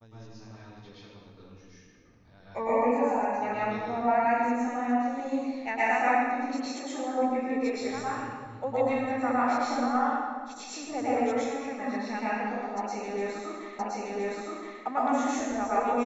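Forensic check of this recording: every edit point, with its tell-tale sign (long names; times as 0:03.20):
0:13.79: the same again, the last 1.02 s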